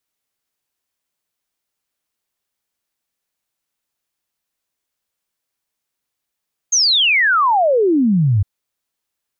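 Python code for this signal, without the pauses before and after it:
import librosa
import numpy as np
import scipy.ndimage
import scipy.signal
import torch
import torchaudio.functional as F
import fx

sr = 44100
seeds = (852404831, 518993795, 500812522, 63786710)

y = fx.ess(sr, length_s=1.71, from_hz=6600.0, to_hz=93.0, level_db=-11.0)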